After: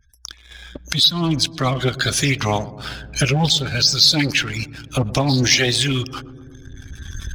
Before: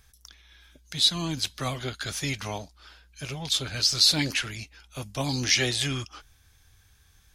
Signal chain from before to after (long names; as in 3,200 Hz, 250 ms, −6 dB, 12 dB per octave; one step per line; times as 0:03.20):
camcorder AGC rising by 15 dB per second
gate on every frequency bin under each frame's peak −20 dB strong
in parallel at 0 dB: downward compressor 6 to 1, threshold −38 dBFS, peak gain reduction 20 dB
on the sum: leveller curve on the samples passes 2
on a send: feedback echo with a low-pass in the loop 121 ms, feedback 82%, low-pass 910 Hz, level −16 dB
on the sum: highs frequency-modulated by the lows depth 0.16 ms
level −1 dB